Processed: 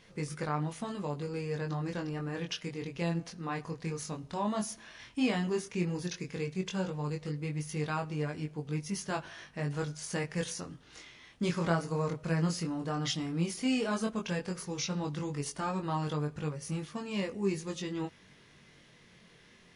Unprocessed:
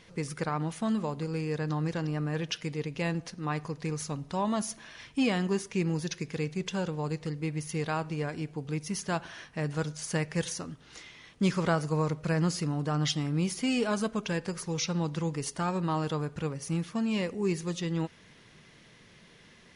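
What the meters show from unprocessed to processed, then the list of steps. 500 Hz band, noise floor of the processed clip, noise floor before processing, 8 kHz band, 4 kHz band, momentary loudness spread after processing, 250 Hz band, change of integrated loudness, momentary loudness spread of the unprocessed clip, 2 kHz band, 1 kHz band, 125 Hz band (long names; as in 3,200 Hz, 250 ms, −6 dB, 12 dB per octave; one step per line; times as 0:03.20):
−3.0 dB, −60 dBFS, −57 dBFS, −3.0 dB, −3.0 dB, 7 LU, −3.5 dB, −3.0 dB, 7 LU, −3.0 dB, −2.5 dB, −3.5 dB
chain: chorus effect 0.12 Hz, delay 20 ms, depth 4.1 ms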